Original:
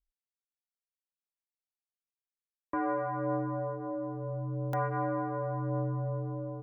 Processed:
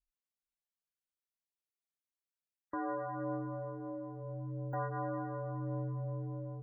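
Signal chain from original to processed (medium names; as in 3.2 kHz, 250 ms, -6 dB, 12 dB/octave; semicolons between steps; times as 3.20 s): spectral gate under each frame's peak -25 dB strong; echo that smears into a reverb 472 ms, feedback 40%, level -15 dB; trim -6 dB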